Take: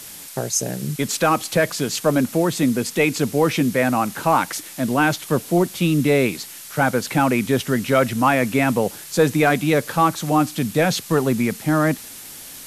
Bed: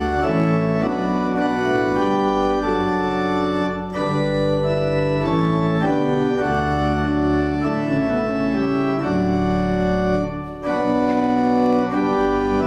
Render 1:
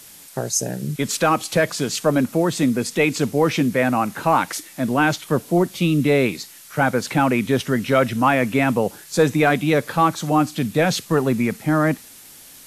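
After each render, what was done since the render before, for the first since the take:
noise reduction from a noise print 6 dB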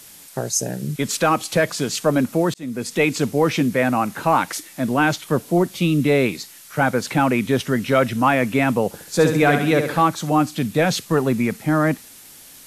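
0:02.54–0:02.97: fade in
0:08.87–0:10.02: flutter between parallel walls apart 11.8 metres, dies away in 0.59 s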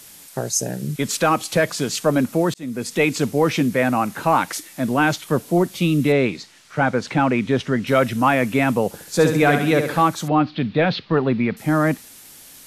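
0:06.12–0:07.87: high-frequency loss of the air 90 metres
0:10.28–0:11.57: Butterworth low-pass 4,400 Hz 48 dB per octave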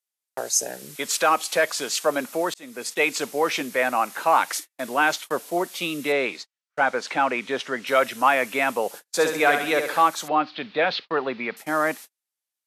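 noise gate −32 dBFS, range −44 dB
high-pass filter 560 Hz 12 dB per octave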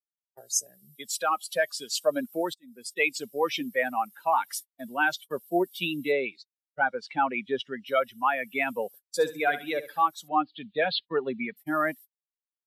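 spectral dynamics exaggerated over time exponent 2
speech leveller within 4 dB 0.5 s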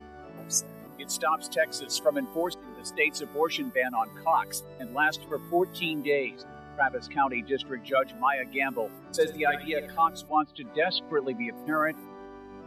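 mix in bed −26.5 dB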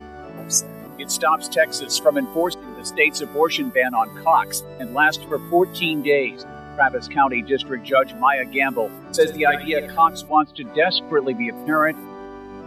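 level +8.5 dB
brickwall limiter −3 dBFS, peak gain reduction 1.5 dB

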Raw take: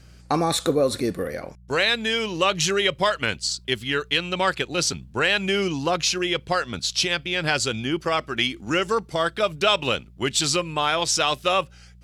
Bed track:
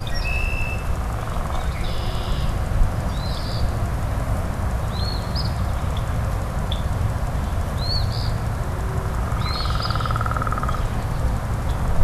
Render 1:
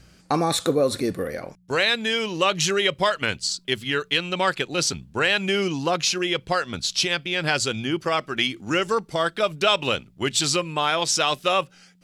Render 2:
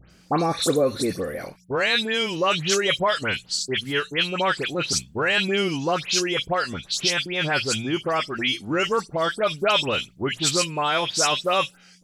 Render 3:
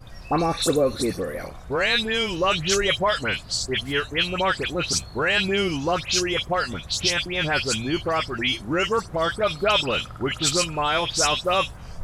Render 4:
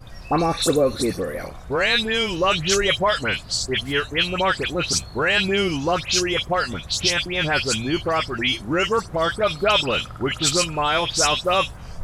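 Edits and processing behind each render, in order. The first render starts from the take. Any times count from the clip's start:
hum removal 60 Hz, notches 2
all-pass dispersion highs, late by 109 ms, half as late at 2,800 Hz; hard clipping −9 dBFS, distortion −49 dB
mix in bed track −17.5 dB
level +2 dB

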